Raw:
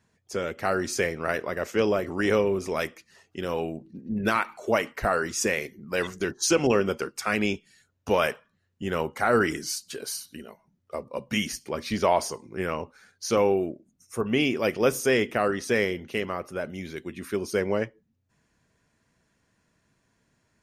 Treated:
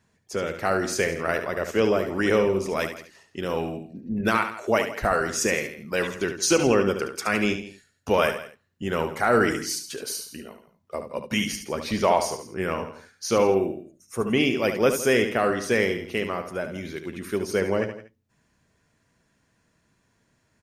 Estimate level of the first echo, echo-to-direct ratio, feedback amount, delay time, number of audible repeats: -8.5 dB, -7.5 dB, no regular repeats, 72 ms, 3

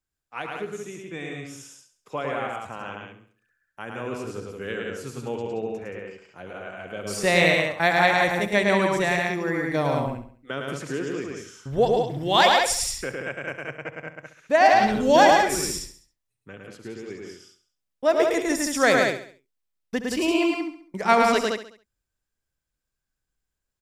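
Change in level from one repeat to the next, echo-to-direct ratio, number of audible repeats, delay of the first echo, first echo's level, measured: no regular repeats, -0.5 dB, 6, 68 ms, -14.0 dB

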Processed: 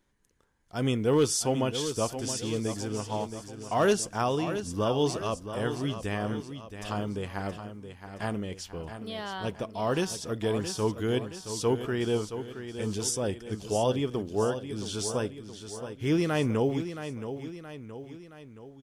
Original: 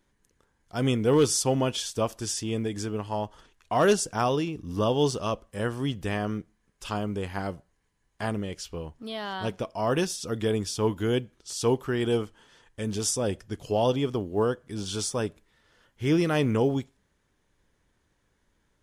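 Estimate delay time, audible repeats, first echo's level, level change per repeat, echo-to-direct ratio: 672 ms, 3, -10.0 dB, -5.5 dB, -8.5 dB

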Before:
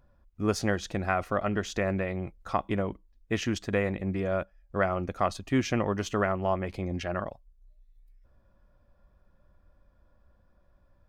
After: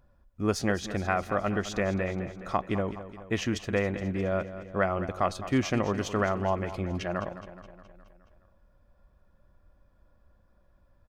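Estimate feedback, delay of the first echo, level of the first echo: 58%, 210 ms, -13.0 dB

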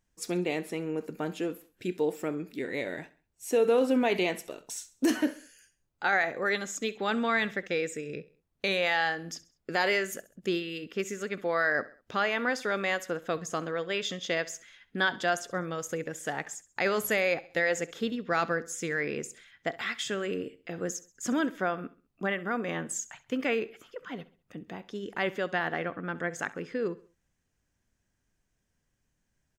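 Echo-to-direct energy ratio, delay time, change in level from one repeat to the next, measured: -18.0 dB, 66 ms, -7.5 dB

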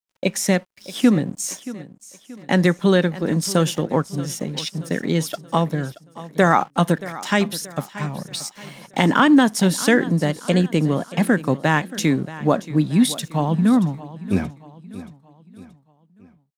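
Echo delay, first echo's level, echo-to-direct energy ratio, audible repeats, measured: 628 ms, -16.5 dB, -15.5 dB, 3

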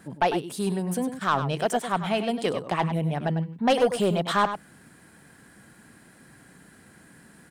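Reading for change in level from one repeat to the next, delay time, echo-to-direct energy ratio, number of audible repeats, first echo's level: no regular repeats, 100 ms, -10.0 dB, 1, -10.0 dB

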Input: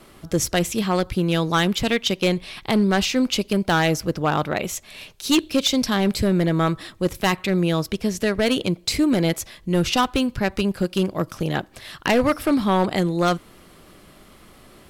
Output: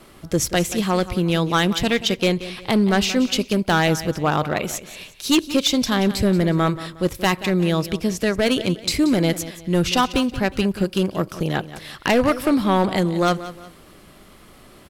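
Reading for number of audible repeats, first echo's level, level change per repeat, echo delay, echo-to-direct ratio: 2, -14.5 dB, -9.0 dB, 180 ms, -14.0 dB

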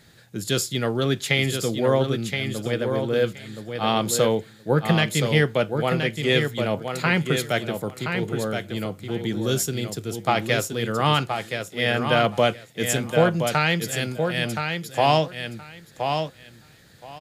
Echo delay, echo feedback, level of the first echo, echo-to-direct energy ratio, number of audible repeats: 1022 ms, 16%, -6.0 dB, -6.0 dB, 2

